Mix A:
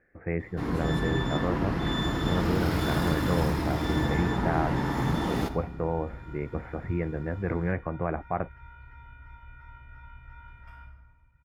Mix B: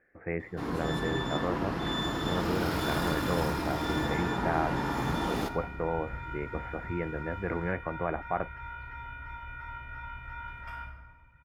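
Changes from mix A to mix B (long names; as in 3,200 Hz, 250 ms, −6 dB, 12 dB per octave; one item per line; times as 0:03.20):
first sound: add parametric band 2,000 Hz −3.5 dB 0.43 octaves
second sound +10.5 dB
master: add low-shelf EQ 220 Hz −9 dB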